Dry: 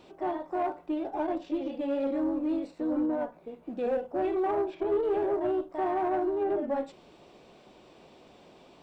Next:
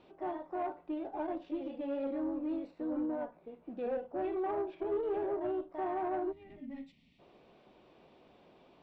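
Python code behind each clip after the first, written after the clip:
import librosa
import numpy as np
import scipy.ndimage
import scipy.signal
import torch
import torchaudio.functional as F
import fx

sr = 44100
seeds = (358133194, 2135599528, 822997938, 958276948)

y = scipy.signal.sosfilt(scipy.signal.butter(2, 3500.0, 'lowpass', fs=sr, output='sos'), x)
y = fx.spec_box(y, sr, start_s=6.32, length_s=0.87, low_hz=300.0, high_hz=1800.0, gain_db=-21)
y = y * librosa.db_to_amplitude(-6.5)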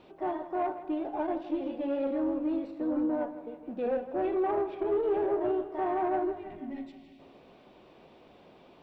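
y = fx.echo_feedback(x, sr, ms=160, feedback_pct=59, wet_db=-14.0)
y = y * librosa.db_to_amplitude(5.5)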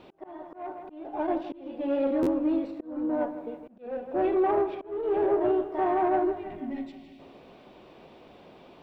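y = fx.auto_swell(x, sr, attack_ms=431.0)
y = fx.buffer_glitch(y, sr, at_s=(2.22,), block=512, repeats=3)
y = y * librosa.db_to_amplitude(4.5)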